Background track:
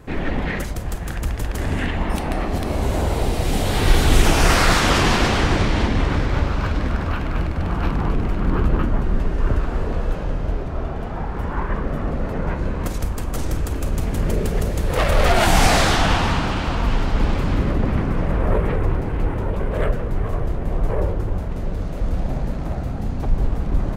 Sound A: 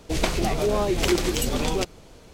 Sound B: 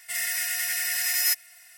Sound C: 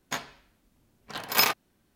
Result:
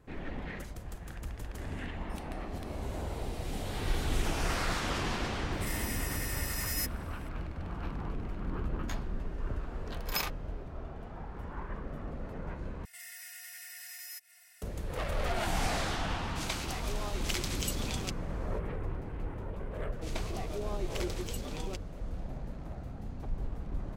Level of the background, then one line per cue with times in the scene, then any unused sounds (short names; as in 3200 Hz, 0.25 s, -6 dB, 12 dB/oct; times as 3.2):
background track -16.5 dB
5.52 add B -11.5 dB
8.77 add C -11.5 dB
12.85 replace with B -8 dB + compressor 2:1, threshold -45 dBFS
16.26 add A -15 dB + tilt shelf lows -8 dB
19.92 add A -15.5 dB